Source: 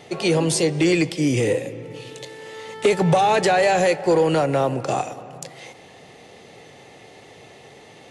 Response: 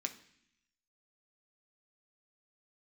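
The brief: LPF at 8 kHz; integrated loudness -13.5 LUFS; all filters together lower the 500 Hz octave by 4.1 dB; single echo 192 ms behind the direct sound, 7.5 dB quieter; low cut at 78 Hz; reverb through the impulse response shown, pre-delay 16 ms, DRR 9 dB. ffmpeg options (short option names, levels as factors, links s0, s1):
-filter_complex "[0:a]highpass=78,lowpass=8000,equalizer=f=500:t=o:g=-5,aecho=1:1:192:0.422,asplit=2[s0][s1];[1:a]atrim=start_sample=2205,adelay=16[s2];[s1][s2]afir=irnorm=-1:irlink=0,volume=0.376[s3];[s0][s3]amix=inputs=2:normalize=0,volume=2.37"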